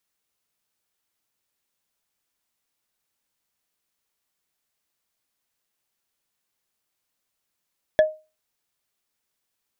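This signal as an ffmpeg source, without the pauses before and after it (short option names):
-f lavfi -i "aevalsrc='0.355*pow(10,-3*t/0.29)*sin(2*PI*622*t)+0.126*pow(10,-3*t/0.086)*sin(2*PI*1714.9*t)+0.0447*pow(10,-3*t/0.038)*sin(2*PI*3361.3*t)+0.0158*pow(10,-3*t/0.021)*sin(2*PI*5556.3*t)+0.00562*pow(10,-3*t/0.013)*sin(2*PI*8297.5*t)':d=0.45:s=44100"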